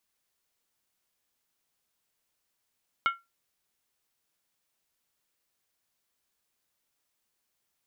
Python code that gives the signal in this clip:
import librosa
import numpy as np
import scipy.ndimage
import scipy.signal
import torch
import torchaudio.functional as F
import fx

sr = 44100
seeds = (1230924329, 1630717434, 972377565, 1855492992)

y = fx.strike_skin(sr, length_s=0.63, level_db=-19.0, hz=1370.0, decay_s=0.21, tilt_db=6, modes=5)